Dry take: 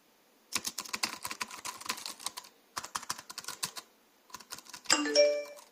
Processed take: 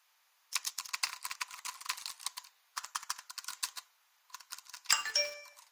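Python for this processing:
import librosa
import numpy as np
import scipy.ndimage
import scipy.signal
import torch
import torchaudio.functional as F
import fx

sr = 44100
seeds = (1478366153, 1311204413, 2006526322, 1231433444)

p1 = scipy.signal.sosfilt(scipy.signal.butter(4, 930.0, 'highpass', fs=sr, output='sos'), x)
p2 = fx.quant_dither(p1, sr, seeds[0], bits=6, dither='none')
p3 = p1 + F.gain(torch.from_numpy(p2), -11.5).numpy()
p4 = 10.0 ** (-10.5 / 20.0) * (np.abs((p3 / 10.0 ** (-10.5 / 20.0) + 3.0) % 4.0 - 2.0) - 1.0)
y = F.gain(torch.from_numpy(p4), -3.0).numpy()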